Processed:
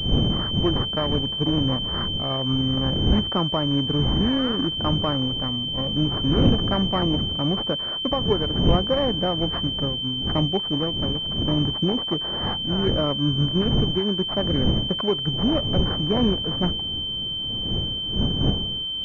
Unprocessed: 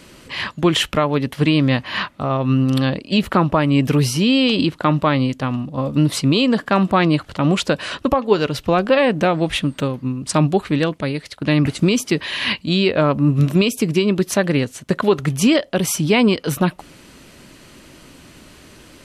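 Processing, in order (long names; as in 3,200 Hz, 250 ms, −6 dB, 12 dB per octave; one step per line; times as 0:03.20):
wind on the microphone 190 Hz −20 dBFS
sample-and-hold swept by an LFO 12×, swing 60% 0.2 Hz
switching amplifier with a slow clock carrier 3,100 Hz
level −7.5 dB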